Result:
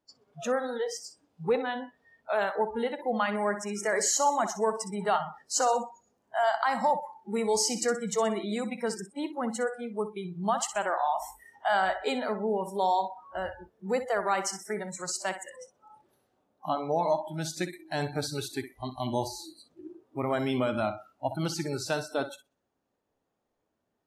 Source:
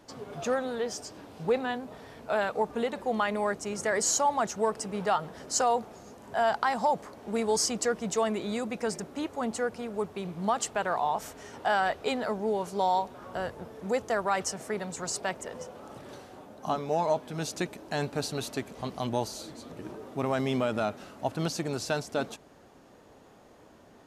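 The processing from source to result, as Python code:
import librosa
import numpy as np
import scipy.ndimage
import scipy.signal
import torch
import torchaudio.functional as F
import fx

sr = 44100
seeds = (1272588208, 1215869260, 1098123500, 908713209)

y = fx.echo_feedback(x, sr, ms=63, feedback_pct=52, wet_db=-10.0)
y = fx.noise_reduce_blind(y, sr, reduce_db=26)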